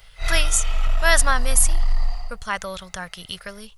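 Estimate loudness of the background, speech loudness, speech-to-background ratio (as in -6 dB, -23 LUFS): -27.5 LUFS, -22.0 LUFS, 5.5 dB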